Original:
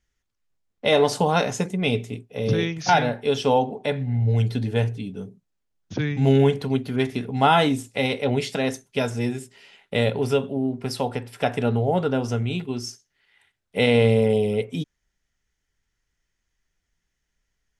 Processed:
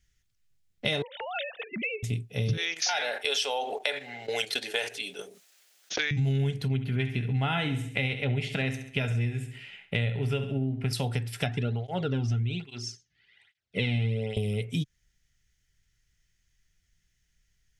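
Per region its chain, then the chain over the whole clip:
1.02–2.03 s: formants replaced by sine waves + high-pass 540 Hz 6 dB/octave + compression 2.5:1, threshold -30 dBFS
2.57–6.11 s: high-pass 500 Hz 24 dB/octave + gate -41 dBFS, range -16 dB + level flattener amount 50%
6.68–10.93 s: resonant high shelf 3.6 kHz -10 dB, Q 1.5 + feedback delay 68 ms, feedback 44%, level -12.5 dB
11.46–14.37 s: low-pass 4.9 kHz + bass shelf 75 Hz +11.5 dB + cancelling through-zero flanger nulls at 1.2 Hz, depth 2.2 ms
whole clip: ten-band graphic EQ 125 Hz +5 dB, 250 Hz -7 dB, 500 Hz -8 dB, 1 kHz -12 dB; compression 6:1, threshold -31 dBFS; trim +5.5 dB

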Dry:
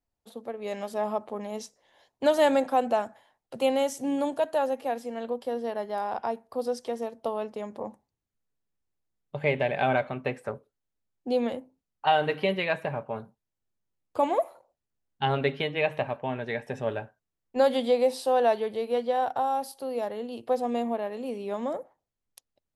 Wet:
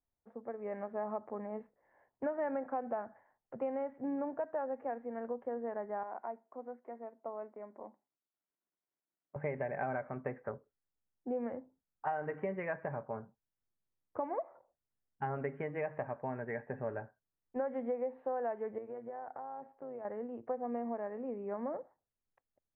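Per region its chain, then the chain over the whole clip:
6.03–9.36 s: companded quantiser 8-bit + cabinet simulation 370–2300 Hz, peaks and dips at 480 Hz -10 dB, 830 Hz -6 dB, 1.2 kHz -6 dB, 1.7 kHz -8 dB
18.78–20.05 s: compression 4:1, threshold -34 dBFS + AM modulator 110 Hz, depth 30%
whole clip: steep low-pass 2 kHz 48 dB/octave; compression 5:1, threshold -27 dBFS; trim -6 dB

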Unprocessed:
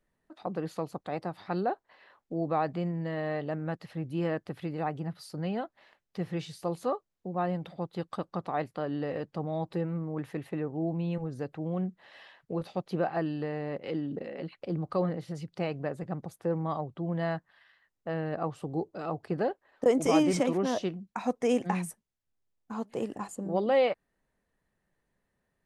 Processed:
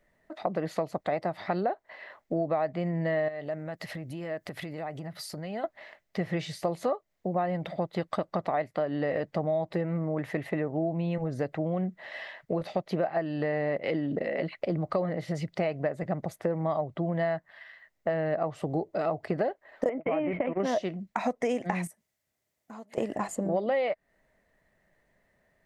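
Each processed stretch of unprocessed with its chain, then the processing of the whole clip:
3.28–5.64 s: treble shelf 5.2 kHz +11.5 dB + compression, threshold -42 dBFS
19.89–20.60 s: gate -29 dBFS, range -34 dB + elliptic low-pass 2.7 kHz, stop band 60 dB + compression, threshold -26 dBFS
21.87–22.98 s: peaking EQ 11 kHz +8 dB 1.7 oct + compression 3:1, threshold -54 dBFS + high-pass 75 Hz
whole clip: graphic EQ with 31 bands 630 Hz +11 dB, 2 kHz +10 dB, 10 kHz -5 dB; compression 6:1, threshold -32 dBFS; trim +6.5 dB

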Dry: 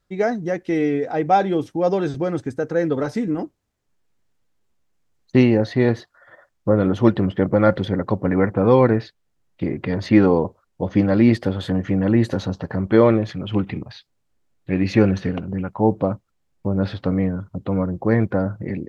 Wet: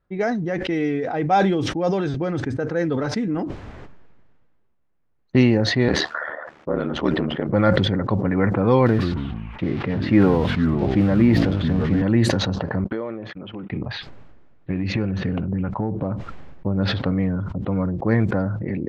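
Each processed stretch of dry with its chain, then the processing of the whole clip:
5.88–7.49 s: high-pass 250 Hz + ring modulator 38 Hz
8.86–12.02 s: zero-crossing glitches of -18 dBFS + distance through air 330 m + ever faster or slower copies 127 ms, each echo -4 st, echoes 3, each echo -6 dB
12.84–13.72 s: Bessel high-pass 220 Hz + gate -35 dBFS, range -49 dB + compression 4:1, threshold -32 dBFS
14.70–16.12 s: compression 16:1, threshold -21 dBFS + bass shelf 220 Hz +5.5 dB + tape noise reduction on one side only decoder only
whole clip: level-controlled noise filter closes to 1.9 kHz, open at -11 dBFS; dynamic bell 490 Hz, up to -4 dB, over -26 dBFS, Q 0.75; decay stretcher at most 30 dB/s

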